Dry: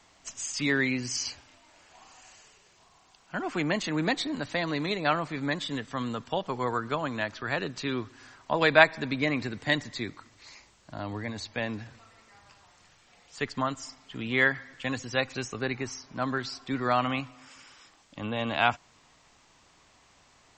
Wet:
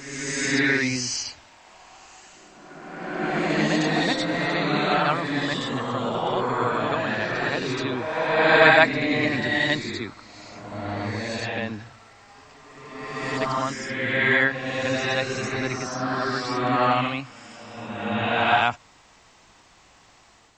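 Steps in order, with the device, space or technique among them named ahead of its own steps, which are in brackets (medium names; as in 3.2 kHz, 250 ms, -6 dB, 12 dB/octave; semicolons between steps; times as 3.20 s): reverse reverb (reverse; reverberation RT60 1.9 s, pre-delay 56 ms, DRR -4.5 dB; reverse); trim +1 dB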